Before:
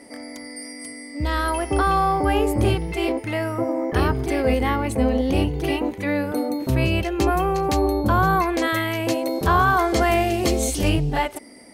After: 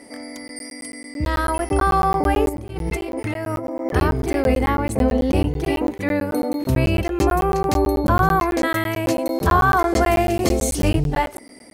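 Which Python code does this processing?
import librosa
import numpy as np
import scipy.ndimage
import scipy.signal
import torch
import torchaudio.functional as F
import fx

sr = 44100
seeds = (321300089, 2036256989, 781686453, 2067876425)

y = fx.dynamic_eq(x, sr, hz=3300.0, q=1.3, threshold_db=-41.0, ratio=4.0, max_db=-5)
y = fx.over_compress(y, sr, threshold_db=-29.0, ratio=-1.0, at=(2.49, 3.86))
y = fx.buffer_crackle(y, sr, first_s=0.48, period_s=0.11, block=512, kind='zero')
y = F.gain(torch.from_numpy(y), 2.0).numpy()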